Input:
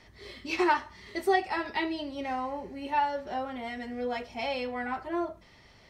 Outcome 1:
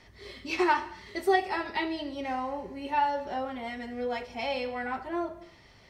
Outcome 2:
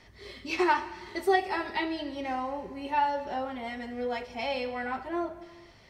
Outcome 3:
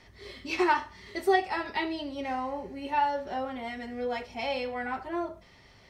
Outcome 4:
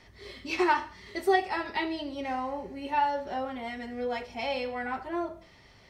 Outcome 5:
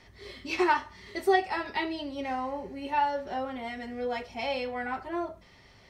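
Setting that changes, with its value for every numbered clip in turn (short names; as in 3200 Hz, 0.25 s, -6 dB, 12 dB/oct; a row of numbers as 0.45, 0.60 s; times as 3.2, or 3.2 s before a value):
non-linear reverb, gate: 320, 520, 140, 210, 80 ms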